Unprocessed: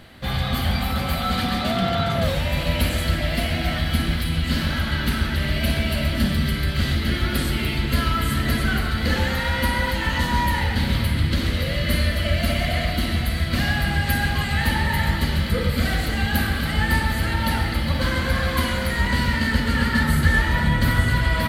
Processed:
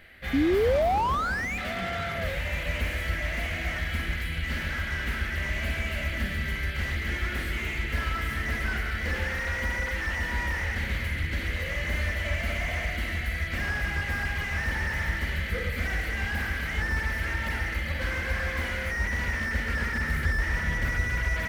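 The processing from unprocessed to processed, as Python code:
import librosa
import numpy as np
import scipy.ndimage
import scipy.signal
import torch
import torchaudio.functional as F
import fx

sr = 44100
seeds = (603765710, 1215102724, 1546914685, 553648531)

y = fx.graphic_eq_10(x, sr, hz=(125, 250, 1000, 2000, 4000, 8000), db=(-10, -8, -11, 11, -8, -7))
y = fx.spec_paint(y, sr, seeds[0], shape='rise', start_s=0.33, length_s=1.25, low_hz=260.0, high_hz=2500.0, level_db=-18.0)
y = fx.slew_limit(y, sr, full_power_hz=97.0)
y = y * 10.0 ** (-4.5 / 20.0)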